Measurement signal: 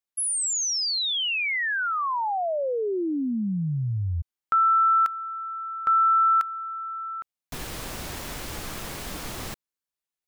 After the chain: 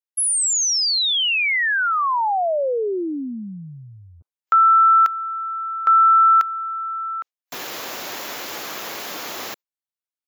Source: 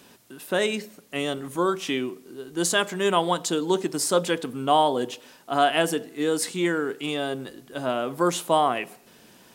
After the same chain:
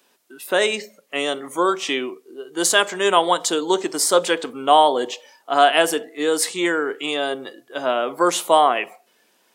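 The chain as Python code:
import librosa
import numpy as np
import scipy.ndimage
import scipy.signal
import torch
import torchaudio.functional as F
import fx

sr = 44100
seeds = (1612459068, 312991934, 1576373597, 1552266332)

y = fx.noise_reduce_blind(x, sr, reduce_db=14)
y = scipy.signal.sosfilt(scipy.signal.butter(2, 390.0, 'highpass', fs=sr, output='sos'), y)
y = y * 10.0 ** (6.5 / 20.0)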